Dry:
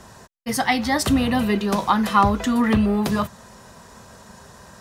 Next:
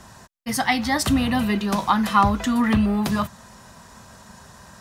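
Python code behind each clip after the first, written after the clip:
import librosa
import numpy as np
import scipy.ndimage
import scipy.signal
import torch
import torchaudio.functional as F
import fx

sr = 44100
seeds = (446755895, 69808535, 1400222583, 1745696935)

y = fx.peak_eq(x, sr, hz=450.0, db=-7.0, octaves=0.68)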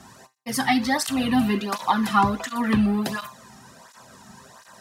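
y = fx.comb_fb(x, sr, f0_hz=130.0, decay_s=0.34, harmonics='all', damping=0.0, mix_pct=60)
y = fx.flanger_cancel(y, sr, hz=1.4, depth_ms=2.1)
y = y * librosa.db_to_amplitude(7.5)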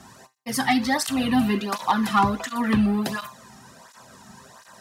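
y = np.clip(x, -10.0 ** (-11.5 / 20.0), 10.0 ** (-11.5 / 20.0))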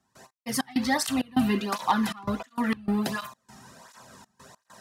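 y = fx.step_gate(x, sr, bpm=99, pattern='.x.x.xxx.xxxxx', floor_db=-24.0, edge_ms=4.5)
y = y * librosa.db_to_amplitude(-2.0)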